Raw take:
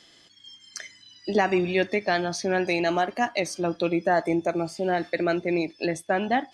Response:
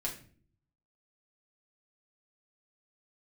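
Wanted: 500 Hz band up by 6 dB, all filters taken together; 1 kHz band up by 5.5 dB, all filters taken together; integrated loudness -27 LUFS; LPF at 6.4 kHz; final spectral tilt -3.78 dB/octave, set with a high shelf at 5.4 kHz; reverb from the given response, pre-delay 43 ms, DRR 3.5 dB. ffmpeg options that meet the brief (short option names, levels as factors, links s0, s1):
-filter_complex "[0:a]lowpass=6400,equalizer=f=500:t=o:g=7,equalizer=f=1000:t=o:g=4,highshelf=f=5400:g=9,asplit=2[s0][s1];[1:a]atrim=start_sample=2205,adelay=43[s2];[s1][s2]afir=irnorm=-1:irlink=0,volume=0.531[s3];[s0][s3]amix=inputs=2:normalize=0,volume=0.376"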